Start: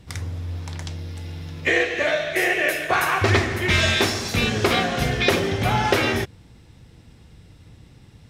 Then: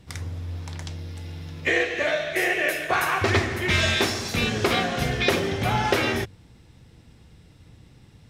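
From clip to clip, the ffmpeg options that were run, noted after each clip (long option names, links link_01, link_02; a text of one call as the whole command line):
ffmpeg -i in.wav -af "bandreject=frequency=50:width_type=h:width=6,bandreject=frequency=100:width_type=h:width=6,volume=-2.5dB" out.wav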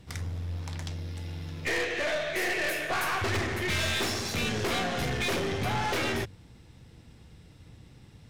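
ffmpeg -i in.wav -af "aeval=exprs='(tanh(20*val(0)+0.35)-tanh(0.35))/20':channel_layout=same" out.wav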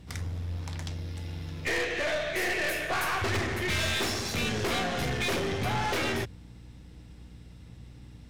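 ffmpeg -i in.wav -af "aeval=exprs='val(0)+0.00398*(sin(2*PI*60*n/s)+sin(2*PI*2*60*n/s)/2+sin(2*PI*3*60*n/s)/3+sin(2*PI*4*60*n/s)/4+sin(2*PI*5*60*n/s)/5)':channel_layout=same" out.wav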